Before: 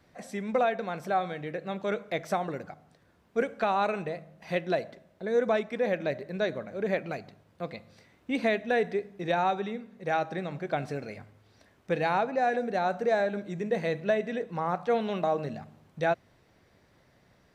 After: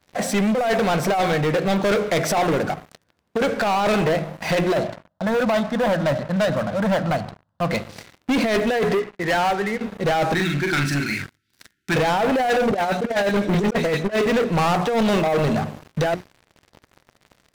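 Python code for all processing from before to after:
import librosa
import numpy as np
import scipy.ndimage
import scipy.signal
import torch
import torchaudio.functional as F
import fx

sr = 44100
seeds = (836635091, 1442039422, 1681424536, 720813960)

y = fx.chain(x, sr, fx.lowpass(hz=3500.0, slope=12),
    fx.fixed_phaser(hz=970.0, stages=4), at=(4.77, 7.7))
y = fx.chain(y, sr, fx.ladder_lowpass(hz=2200.0, resonance_pct=60),
    fx.low_shelf(hz=87.0, db=-5.5), at=(8.97, 9.81))
y = fx.chain(y, sr, fx.brickwall_bandstop(low_hz=390.0, high_hz=1300.0),
    fx.low_shelf(hz=450.0, db=-8.0),
    fx.doubler(ms=42.0, db=-3), at=(10.34, 11.96))
y = fx.chain(y, sr, fx.dispersion(late='highs', ms=103.0, hz=2900.0),
    fx.transient(attack_db=9, sustain_db=-10),
    fx.band_squash(depth_pct=70), at=(12.71, 14.26))
y = fx.hum_notches(y, sr, base_hz=60, count=7)
y = fx.over_compress(y, sr, threshold_db=-29.0, ratio=-0.5)
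y = fx.leveller(y, sr, passes=5)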